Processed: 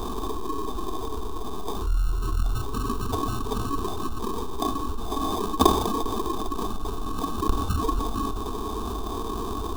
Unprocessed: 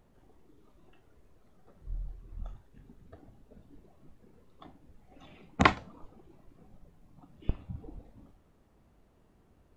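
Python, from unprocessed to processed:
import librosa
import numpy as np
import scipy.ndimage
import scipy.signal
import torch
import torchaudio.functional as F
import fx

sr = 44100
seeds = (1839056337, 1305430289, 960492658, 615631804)

y = fx.peak_eq(x, sr, hz=120.0, db=13.0, octaves=0.51, at=(1.97, 4.19))
y = fx.echo_wet_highpass(y, sr, ms=201, feedback_pct=66, hz=3900.0, wet_db=-17.5)
y = fx.sample_hold(y, sr, seeds[0], rate_hz=1400.0, jitter_pct=0)
y = fx.peak_eq(y, sr, hz=440.0, db=10.0, octaves=0.33)
y = fx.fixed_phaser(y, sr, hz=540.0, stages=6)
y = fx.small_body(y, sr, hz=(1100.0, 3600.0), ring_ms=45, db=16)
y = fx.env_flatten(y, sr, amount_pct=70)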